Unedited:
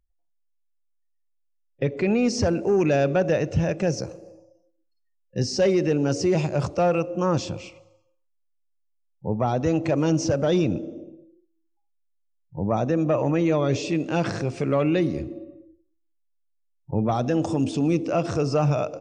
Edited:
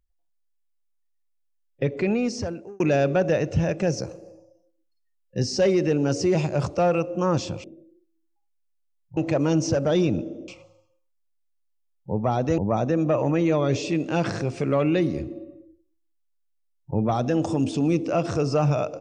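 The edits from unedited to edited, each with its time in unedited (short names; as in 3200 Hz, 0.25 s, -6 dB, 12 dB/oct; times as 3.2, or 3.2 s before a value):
1.98–2.8 fade out
7.64–9.74 swap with 11.05–12.58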